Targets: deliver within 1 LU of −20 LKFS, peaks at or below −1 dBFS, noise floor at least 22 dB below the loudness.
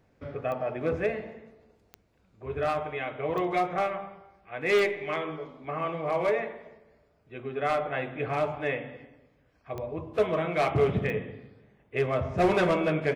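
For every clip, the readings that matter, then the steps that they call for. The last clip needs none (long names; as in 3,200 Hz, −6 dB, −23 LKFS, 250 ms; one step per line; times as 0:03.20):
number of clicks 6; integrated loudness −29.0 LKFS; sample peak −13.5 dBFS; target loudness −20.0 LKFS
→ click removal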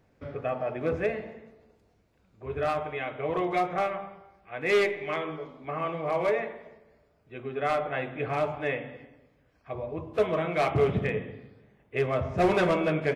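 number of clicks 0; integrated loudness −29.0 LKFS; sample peak −13.5 dBFS; target loudness −20.0 LKFS
→ level +9 dB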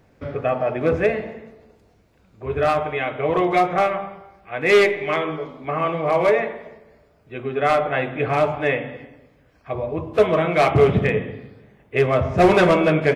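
integrated loudness −20.0 LKFS; sample peak −4.5 dBFS; background noise floor −57 dBFS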